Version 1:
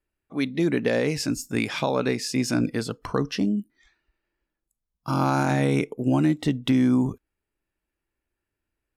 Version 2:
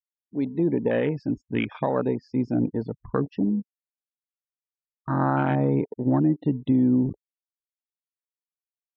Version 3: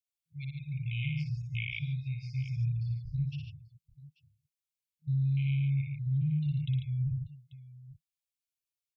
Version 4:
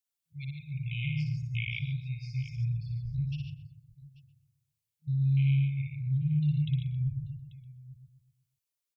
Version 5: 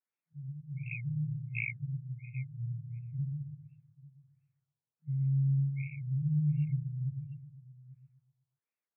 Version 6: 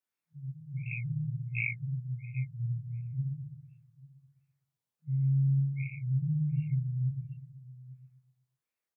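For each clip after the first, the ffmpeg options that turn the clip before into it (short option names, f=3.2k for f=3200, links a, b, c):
-af "afftfilt=real='re*gte(hypot(re,im),0.0355)':imag='im*gte(hypot(re,im),0.0355)':win_size=1024:overlap=0.75,afwtdn=0.0398,lowpass=f=4k:w=0.5412,lowpass=f=4k:w=1.3066"
-filter_complex "[0:a]asplit=2[a][b];[b]aecho=0:1:60|111|144|838:0.596|0.282|0.473|0.106[c];[a][c]amix=inputs=2:normalize=0,afftfilt=real='re*(1-between(b*sr/4096,160,2100))':imag='im*(1-between(b*sr/4096,160,2100))':win_size=4096:overlap=0.75,alimiter=level_in=0.5dB:limit=-24dB:level=0:latency=1:release=25,volume=-0.5dB"
-filter_complex "[0:a]highshelf=f=4.5k:g=5,asplit=2[a][b];[b]adelay=125,lowpass=f=1.1k:p=1,volume=-5.5dB,asplit=2[c][d];[d]adelay=125,lowpass=f=1.1k:p=1,volume=0.45,asplit=2[e][f];[f]adelay=125,lowpass=f=1.1k:p=1,volume=0.45,asplit=2[g][h];[h]adelay=125,lowpass=f=1.1k:p=1,volume=0.45,asplit=2[i][j];[j]adelay=125,lowpass=f=1.1k:p=1,volume=0.45[k];[c][e][g][i][k]amix=inputs=5:normalize=0[l];[a][l]amix=inputs=2:normalize=0"
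-af "highpass=f=140:w=0.5412,highpass=f=140:w=1.3066,highshelf=f=3.4k:g=9.5,afftfilt=real='re*lt(b*sr/1024,1000*pow(2800/1000,0.5+0.5*sin(2*PI*1.4*pts/sr)))':imag='im*lt(b*sr/1024,1000*pow(2800/1000,0.5+0.5*sin(2*PI*1.4*pts/sr)))':win_size=1024:overlap=0.75"
-filter_complex "[0:a]asplit=2[a][b];[b]adelay=24,volume=-4dB[c];[a][c]amix=inputs=2:normalize=0,volume=1dB"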